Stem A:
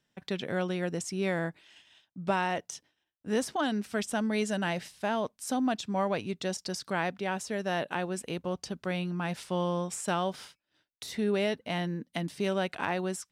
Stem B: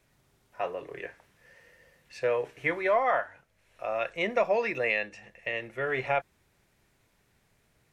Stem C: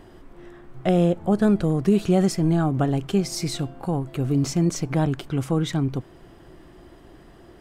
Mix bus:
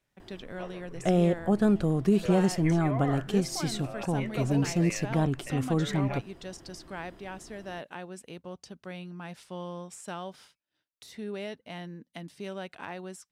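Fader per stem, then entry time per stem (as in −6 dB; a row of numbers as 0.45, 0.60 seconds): −8.5, −11.5, −4.5 decibels; 0.00, 0.00, 0.20 seconds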